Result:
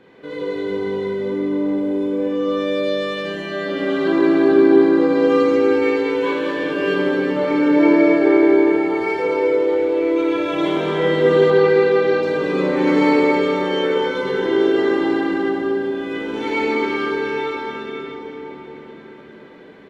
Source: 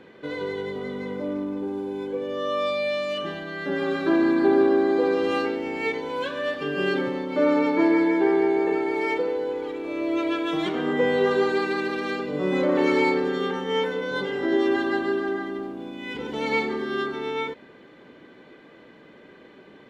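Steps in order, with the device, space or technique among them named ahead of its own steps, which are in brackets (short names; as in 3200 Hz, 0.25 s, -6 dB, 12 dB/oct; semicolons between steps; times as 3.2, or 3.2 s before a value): cave (echo 0.224 s -8.5 dB; reverb RT60 4.7 s, pre-delay 16 ms, DRR -5.5 dB); 11.5–12.23 LPF 5000 Hz 12 dB/oct; gain -2.5 dB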